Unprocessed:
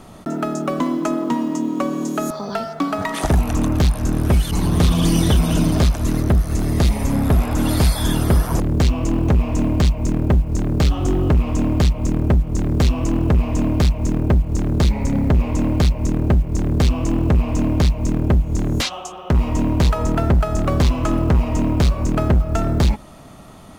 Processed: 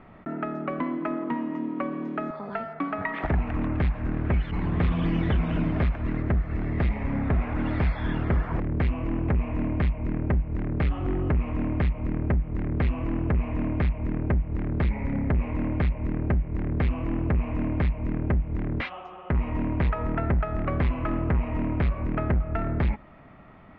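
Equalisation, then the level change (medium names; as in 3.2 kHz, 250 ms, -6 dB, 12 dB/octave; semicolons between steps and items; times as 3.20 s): resonant low-pass 2.1 kHz, resonance Q 2.7; distance through air 230 m; -8.5 dB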